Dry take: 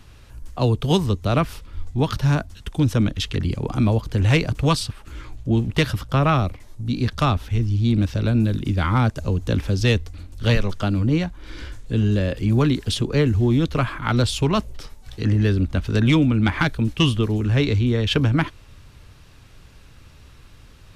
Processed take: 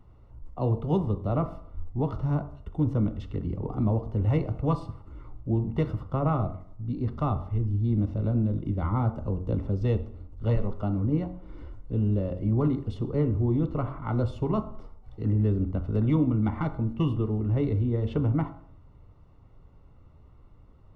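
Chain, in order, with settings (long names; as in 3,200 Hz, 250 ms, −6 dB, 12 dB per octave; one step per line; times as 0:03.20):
Savitzky-Golay smoothing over 65 samples
hum removal 45.72 Hz, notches 33
on a send: convolution reverb RT60 0.60 s, pre-delay 5 ms, DRR 12.5 dB
on the sum: level −6 dB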